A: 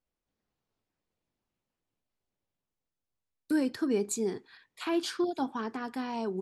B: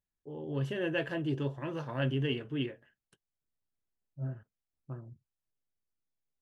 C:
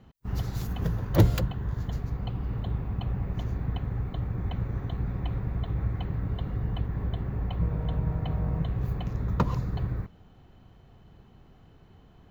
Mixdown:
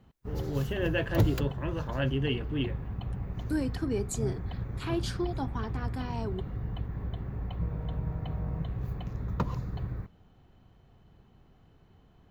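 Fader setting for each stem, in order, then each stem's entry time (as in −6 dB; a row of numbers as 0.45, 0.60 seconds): −3.0, +2.0, −5.0 decibels; 0.00, 0.00, 0.00 seconds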